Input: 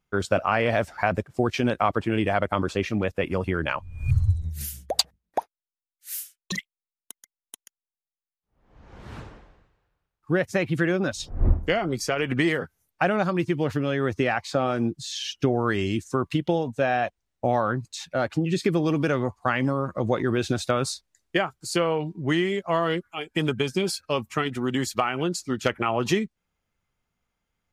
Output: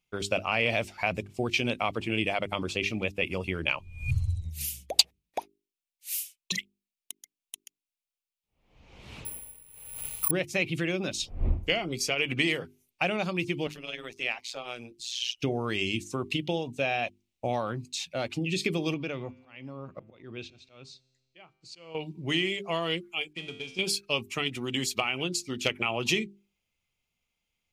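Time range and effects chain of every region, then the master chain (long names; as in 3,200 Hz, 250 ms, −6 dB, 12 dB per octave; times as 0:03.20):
0:09.25–0:10.31: bad sample-rate conversion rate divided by 4×, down filtered, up zero stuff + background raised ahead of every attack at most 50 dB per second
0:13.67–0:15.37: high-pass filter 870 Hz 6 dB per octave + amplitude modulation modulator 120 Hz, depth 75%
0:18.94–0:21.95: high-frequency loss of the air 160 metres + volume swells 508 ms + tuned comb filter 130 Hz, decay 1.7 s, mix 40%
0:23.33–0:23.79: variable-slope delta modulation 64 kbit/s + low-pass filter 6,000 Hz + tuned comb filter 88 Hz, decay 0.71 s, mix 80%
whole clip: high shelf with overshoot 2,000 Hz +6.5 dB, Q 3; mains-hum notches 50/100/150/200/250/300/350/400 Hz; level −6 dB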